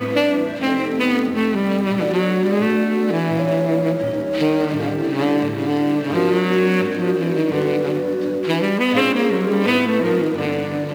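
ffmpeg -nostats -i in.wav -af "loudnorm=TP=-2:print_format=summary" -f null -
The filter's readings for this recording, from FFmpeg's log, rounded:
Input Integrated:    -19.0 LUFS
Input True Peak:      -3.9 dBTP
Input LRA:             0.6 LU
Input Threshold:     -29.0 LUFS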